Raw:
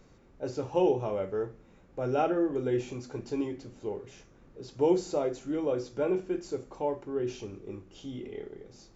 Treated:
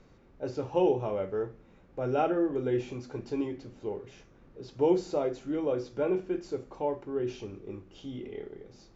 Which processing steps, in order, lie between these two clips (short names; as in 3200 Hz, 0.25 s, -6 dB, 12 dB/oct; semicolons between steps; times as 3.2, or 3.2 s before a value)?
LPF 5100 Hz 12 dB/oct